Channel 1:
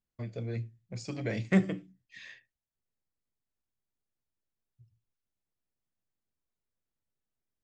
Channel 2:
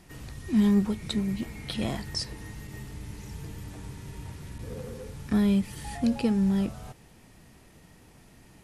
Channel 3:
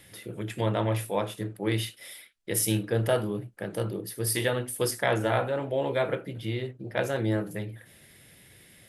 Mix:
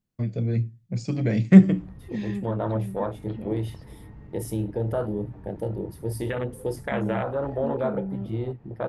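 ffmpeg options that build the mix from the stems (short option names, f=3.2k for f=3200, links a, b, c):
-filter_complex "[0:a]equalizer=f=170:w=0.6:g=12,volume=2dB[a];[1:a]lowpass=1.1k,acompressor=threshold=-50dB:ratio=1.5,adelay=1600,volume=1.5dB[b];[2:a]agate=range=-17dB:threshold=-46dB:ratio=16:detection=peak,afwtdn=0.0316,alimiter=limit=-20dB:level=0:latency=1:release=111,adelay=1850,volume=2.5dB[c];[a][b][c]amix=inputs=3:normalize=0"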